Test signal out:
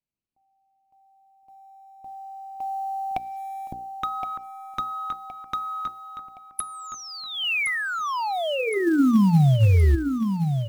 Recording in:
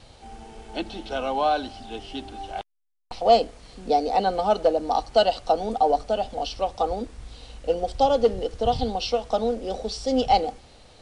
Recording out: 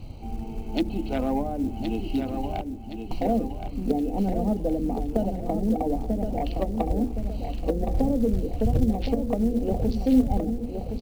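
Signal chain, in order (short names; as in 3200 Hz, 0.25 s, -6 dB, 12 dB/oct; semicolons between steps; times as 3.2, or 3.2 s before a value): Wiener smoothing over 25 samples; notches 60/120/180/240/300/360/420/480/540 Hz; treble ducked by the level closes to 350 Hz, closed at -22 dBFS; band shelf 800 Hz -10.5 dB 2.3 oct; in parallel at +2 dB: compressor 4:1, threshold -40 dBFS; on the sum: short-mantissa float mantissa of 4-bit; on a send: feedback echo 1.068 s, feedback 42%, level -7 dB; on the sum: gain +6.5 dB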